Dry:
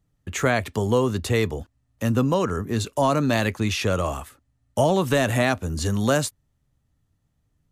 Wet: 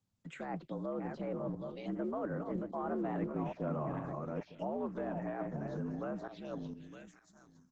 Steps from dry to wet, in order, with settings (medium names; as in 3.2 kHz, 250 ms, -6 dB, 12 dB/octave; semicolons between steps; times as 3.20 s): backward echo that repeats 422 ms, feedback 42%, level -8 dB; Doppler pass-by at 3.20 s, 29 m/s, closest 11 m; frequency shift +68 Hz; treble shelf 3 kHz +3 dB; reverse; compression 5:1, threshold -43 dBFS, peak gain reduction 22 dB; reverse; low-pass that closes with the level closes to 1.1 kHz, closed at -40.5 dBFS; touch-sensitive phaser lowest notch 350 Hz, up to 4.6 kHz, full sweep at -41.5 dBFS; resampled via 16 kHz; trim +8 dB; Opus 12 kbps 48 kHz